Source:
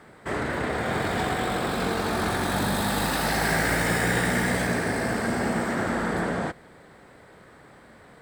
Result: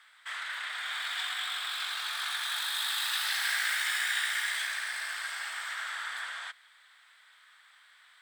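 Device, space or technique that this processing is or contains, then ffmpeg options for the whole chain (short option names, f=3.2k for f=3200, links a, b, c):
headphones lying on a table: -af "highpass=f=1.3k:w=0.5412,highpass=f=1.3k:w=1.3066,equalizer=f=3.4k:t=o:w=0.45:g=10.5,volume=-4dB"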